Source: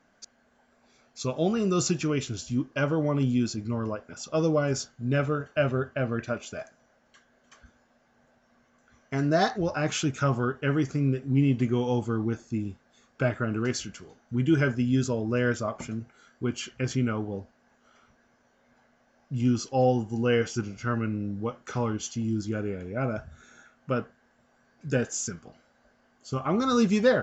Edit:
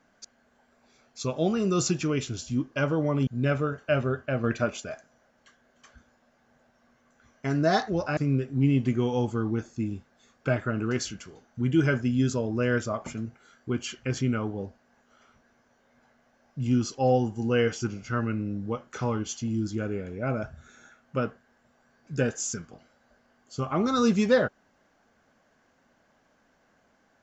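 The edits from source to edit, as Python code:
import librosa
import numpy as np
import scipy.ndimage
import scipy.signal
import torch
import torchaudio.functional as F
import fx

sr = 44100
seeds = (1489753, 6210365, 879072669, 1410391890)

y = fx.edit(x, sr, fx.cut(start_s=3.27, length_s=1.68),
    fx.clip_gain(start_s=6.12, length_s=0.36, db=4.0),
    fx.cut(start_s=9.85, length_s=1.06), tone=tone)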